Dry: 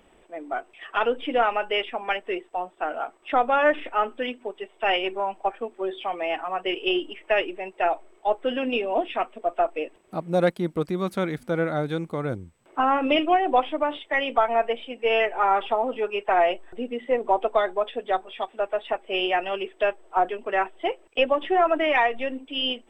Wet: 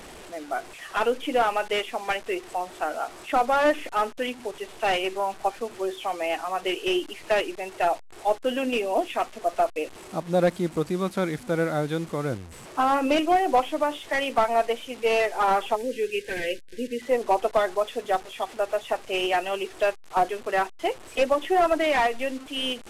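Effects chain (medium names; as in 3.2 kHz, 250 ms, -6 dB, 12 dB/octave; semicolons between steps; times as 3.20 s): one-bit delta coder 64 kbps, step -37.5 dBFS; time-frequency box 15.76–17.02 s, 580–1500 Hz -24 dB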